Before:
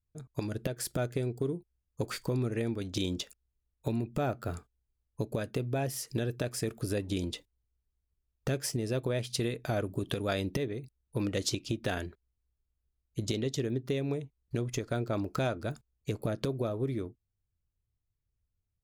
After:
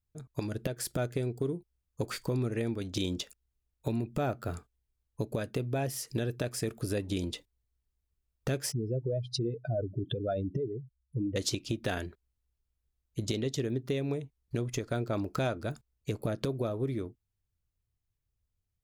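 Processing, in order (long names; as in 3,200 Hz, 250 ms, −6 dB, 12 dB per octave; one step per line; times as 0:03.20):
0:08.72–0:11.36: expanding power law on the bin magnitudes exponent 2.6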